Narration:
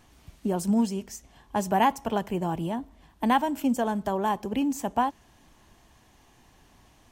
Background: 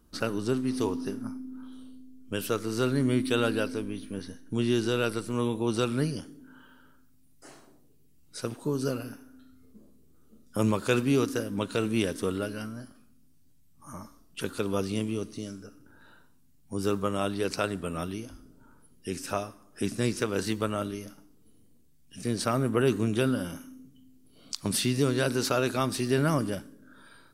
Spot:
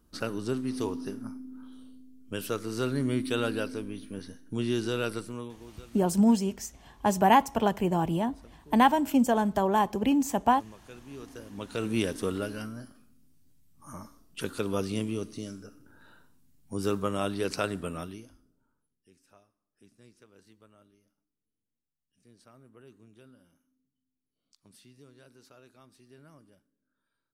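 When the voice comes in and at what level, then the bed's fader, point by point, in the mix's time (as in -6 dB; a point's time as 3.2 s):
5.50 s, +2.0 dB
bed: 5.22 s -3 dB
5.73 s -23.5 dB
11 s -23.5 dB
11.92 s -1 dB
17.85 s -1 dB
19.17 s -29.5 dB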